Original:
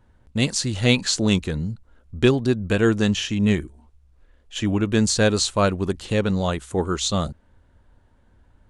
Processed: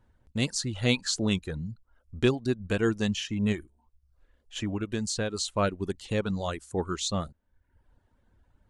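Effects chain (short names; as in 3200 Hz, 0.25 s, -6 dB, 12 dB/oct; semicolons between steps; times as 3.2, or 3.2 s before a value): reverb removal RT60 0.69 s; 3.52–5.48 compressor, threshold -20 dBFS, peak gain reduction 7 dB; gain -6.5 dB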